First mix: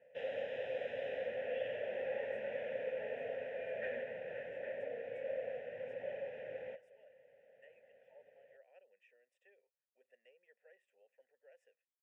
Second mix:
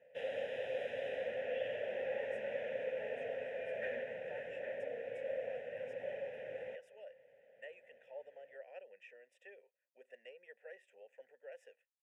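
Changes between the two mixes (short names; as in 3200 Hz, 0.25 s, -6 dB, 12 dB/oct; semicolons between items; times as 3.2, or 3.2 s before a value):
speech +12.0 dB; background: remove air absorption 100 m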